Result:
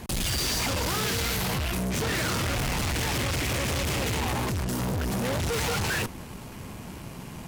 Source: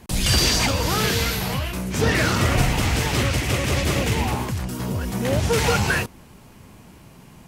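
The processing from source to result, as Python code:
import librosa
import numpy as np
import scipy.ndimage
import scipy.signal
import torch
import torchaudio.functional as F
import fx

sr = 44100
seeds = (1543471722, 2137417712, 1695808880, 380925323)

y = fx.tube_stage(x, sr, drive_db=35.0, bias=0.5)
y = y * librosa.db_to_amplitude(8.5)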